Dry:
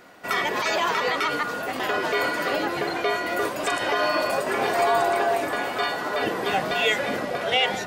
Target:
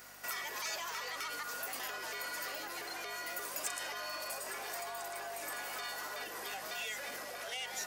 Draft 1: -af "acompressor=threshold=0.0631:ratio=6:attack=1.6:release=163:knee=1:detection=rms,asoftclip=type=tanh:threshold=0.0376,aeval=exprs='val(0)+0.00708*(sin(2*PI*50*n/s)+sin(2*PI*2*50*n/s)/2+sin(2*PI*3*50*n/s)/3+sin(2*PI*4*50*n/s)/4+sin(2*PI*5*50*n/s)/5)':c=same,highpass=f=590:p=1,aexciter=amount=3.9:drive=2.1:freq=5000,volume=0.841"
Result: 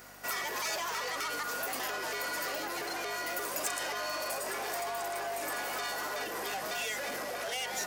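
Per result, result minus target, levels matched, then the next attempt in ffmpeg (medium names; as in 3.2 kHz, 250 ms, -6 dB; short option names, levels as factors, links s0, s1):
compression: peak gain reduction -5 dB; 500 Hz band +3.0 dB
-af "acompressor=threshold=0.0316:ratio=6:attack=1.6:release=163:knee=1:detection=rms,asoftclip=type=tanh:threshold=0.0376,aeval=exprs='val(0)+0.00708*(sin(2*PI*50*n/s)+sin(2*PI*2*50*n/s)/2+sin(2*PI*3*50*n/s)/3+sin(2*PI*4*50*n/s)/4+sin(2*PI*5*50*n/s)/5)':c=same,highpass=f=590:p=1,aexciter=amount=3.9:drive=2.1:freq=5000,volume=0.841"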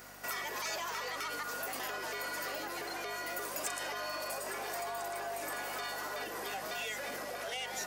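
500 Hz band +3.5 dB
-af "acompressor=threshold=0.0316:ratio=6:attack=1.6:release=163:knee=1:detection=rms,asoftclip=type=tanh:threshold=0.0376,aeval=exprs='val(0)+0.00708*(sin(2*PI*50*n/s)+sin(2*PI*2*50*n/s)/2+sin(2*PI*3*50*n/s)/3+sin(2*PI*4*50*n/s)/4+sin(2*PI*5*50*n/s)/5)':c=same,highpass=f=1400:p=1,aexciter=amount=3.9:drive=2.1:freq=5000,volume=0.841"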